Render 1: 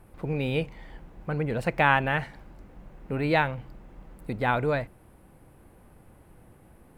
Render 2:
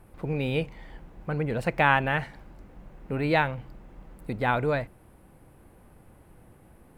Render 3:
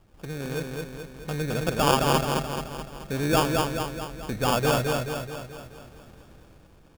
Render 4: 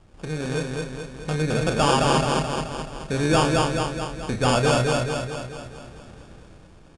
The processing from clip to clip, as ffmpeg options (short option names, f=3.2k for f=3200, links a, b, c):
-af anull
-af "dynaudnorm=f=220:g=9:m=9dB,acrusher=samples=22:mix=1:aa=0.000001,aecho=1:1:215|430|645|860|1075|1290|1505|1720:0.708|0.389|0.214|0.118|0.0648|0.0356|0.0196|0.0108,volume=-5.5dB"
-filter_complex "[0:a]asoftclip=type=tanh:threshold=-16dB,aresample=22050,aresample=44100,asplit=2[a][b];[b]adelay=32,volume=-8dB[c];[a][c]amix=inputs=2:normalize=0,volume=4.5dB"